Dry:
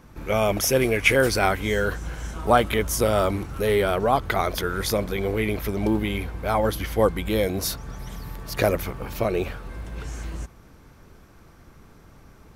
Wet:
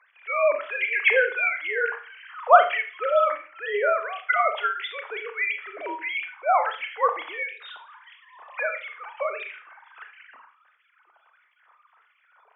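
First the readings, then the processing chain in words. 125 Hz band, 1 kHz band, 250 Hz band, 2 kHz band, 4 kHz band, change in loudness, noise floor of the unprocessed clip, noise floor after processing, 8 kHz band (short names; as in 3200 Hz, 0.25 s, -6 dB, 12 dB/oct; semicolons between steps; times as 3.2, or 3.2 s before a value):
under -40 dB, +2.5 dB, -25.0 dB, +3.0 dB, -6.5 dB, -0.5 dB, -51 dBFS, -64 dBFS, under -40 dB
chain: sine-wave speech; LFO high-pass sine 1.5 Hz 790–2300 Hz; Schroeder reverb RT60 0.37 s, combs from 26 ms, DRR 6.5 dB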